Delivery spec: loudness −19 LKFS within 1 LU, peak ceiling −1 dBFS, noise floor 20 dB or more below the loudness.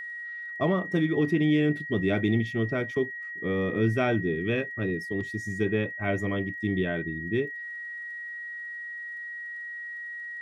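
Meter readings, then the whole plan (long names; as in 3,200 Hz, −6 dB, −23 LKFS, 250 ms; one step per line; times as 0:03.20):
crackle rate 17 per second; interfering tone 1,900 Hz; level of the tone −35 dBFS; integrated loudness −29.0 LKFS; sample peak −13.5 dBFS; target loudness −19.0 LKFS
→ click removal
notch filter 1,900 Hz, Q 30
level +10 dB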